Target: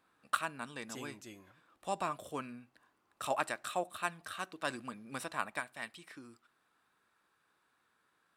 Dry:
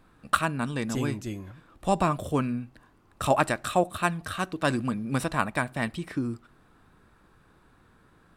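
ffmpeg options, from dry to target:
ffmpeg -i in.wav -af "asetnsamples=nb_out_samples=441:pad=0,asendcmd='5.6 highpass f 1500',highpass=frequency=720:poles=1,volume=-8dB" out.wav

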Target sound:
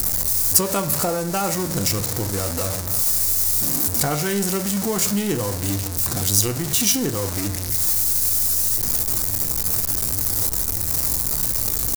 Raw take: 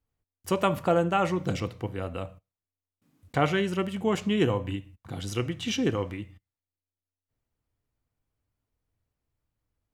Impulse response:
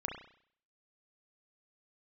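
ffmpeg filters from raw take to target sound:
-filter_complex "[0:a]aeval=exprs='val(0)+0.5*0.0473*sgn(val(0))':channel_layout=same,acompressor=threshold=-24dB:ratio=3,aexciter=amount=6.7:drive=6.4:freq=4400,atempo=0.83,asplit=2[link_01][link_02];[1:a]atrim=start_sample=2205,asetrate=70560,aresample=44100,lowpass=3500[link_03];[link_02][link_03]afir=irnorm=-1:irlink=0,volume=-3dB[link_04];[link_01][link_04]amix=inputs=2:normalize=0"

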